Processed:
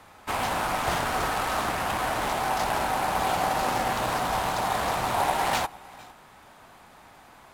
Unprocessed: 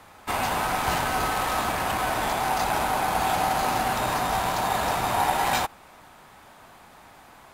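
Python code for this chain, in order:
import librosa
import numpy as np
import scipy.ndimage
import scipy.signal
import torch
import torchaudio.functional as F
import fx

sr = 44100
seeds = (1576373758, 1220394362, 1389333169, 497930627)

y = x + 10.0 ** (-22.0 / 20.0) * np.pad(x, (int(457 * sr / 1000.0), 0))[:len(x)]
y = fx.doppler_dist(y, sr, depth_ms=0.52)
y = F.gain(torch.from_numpy(y), -1.5).numpy()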